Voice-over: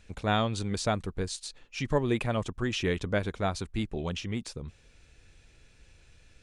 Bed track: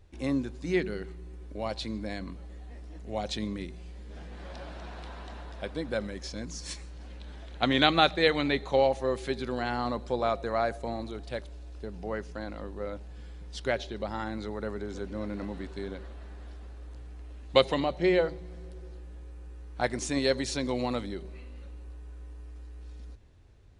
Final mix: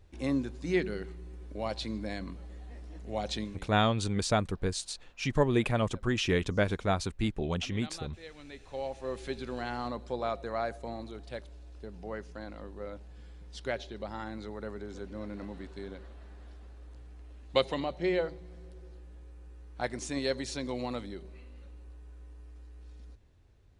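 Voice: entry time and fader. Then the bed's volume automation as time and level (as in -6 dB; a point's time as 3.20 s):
3.45 s, +1.0 dB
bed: 3.40 s -1 dB
3.74 s -24.5 dB
8.31 s -24.5 dB
9.20 s -5 dB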